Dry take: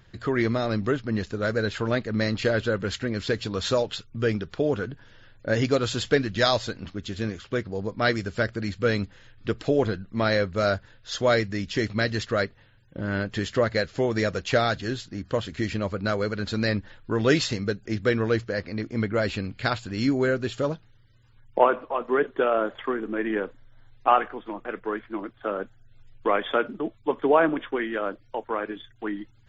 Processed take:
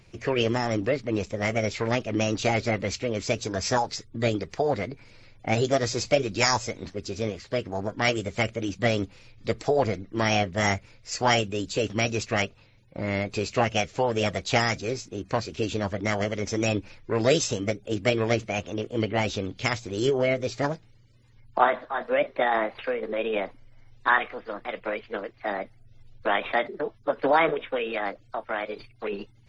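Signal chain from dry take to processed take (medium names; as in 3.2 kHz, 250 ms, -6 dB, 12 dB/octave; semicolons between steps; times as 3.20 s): dynamic bell 970 Hz, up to -4 dB, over -36 dBFS, Q 1.8; formant shift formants +6 st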